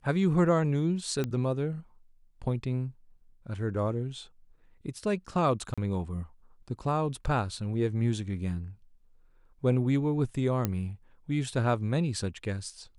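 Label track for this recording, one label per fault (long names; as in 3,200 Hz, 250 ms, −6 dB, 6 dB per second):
1.240000	1.240000	click −18 dBFS
5.740000	5.780000	drop-out 36 ms
10.650000	10.650000	click −14 dBFS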